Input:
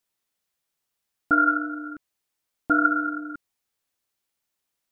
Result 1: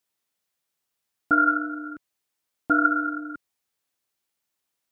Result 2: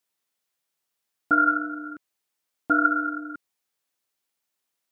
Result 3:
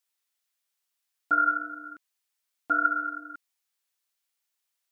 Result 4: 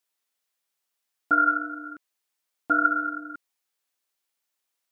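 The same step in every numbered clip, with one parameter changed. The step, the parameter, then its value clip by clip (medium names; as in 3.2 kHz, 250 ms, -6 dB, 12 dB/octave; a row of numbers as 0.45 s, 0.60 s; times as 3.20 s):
high-pass, cutoff frequency: 73 Hz, 190 Hz, 1.4 kHz, 510 Hz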